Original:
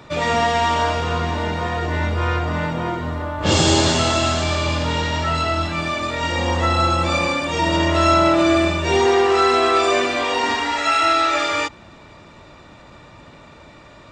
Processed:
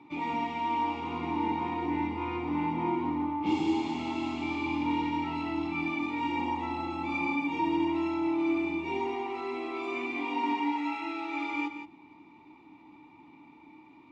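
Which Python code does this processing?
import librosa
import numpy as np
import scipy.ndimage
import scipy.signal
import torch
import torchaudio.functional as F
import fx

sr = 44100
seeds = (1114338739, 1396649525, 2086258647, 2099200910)

y = fx.rider(x, sr, range_db=10, speed_s=0.5)
y = fx.vowel_filter(y, sr, vowel='u')
y = y + 10.0 ** (-9.5 / 20.0) * np.pad(y, (int(171 * sr / 1000.0), 0))[:len(y)]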